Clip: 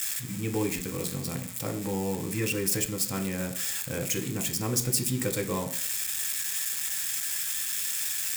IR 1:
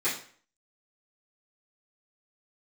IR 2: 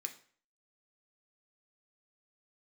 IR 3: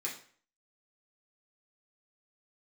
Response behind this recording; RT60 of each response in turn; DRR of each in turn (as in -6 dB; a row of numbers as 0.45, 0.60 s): 2; 0.50, 0.50, 0.50 s; -14.5, 4.0, -5.0 dB